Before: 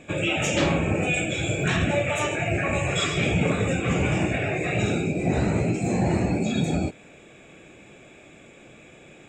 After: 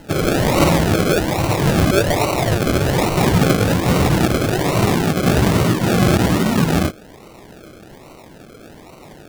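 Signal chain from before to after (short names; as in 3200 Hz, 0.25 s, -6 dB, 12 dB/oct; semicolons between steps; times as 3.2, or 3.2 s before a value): decimation with a swept rate 37×, swing 60% 1.2 Hz; gain +8 dB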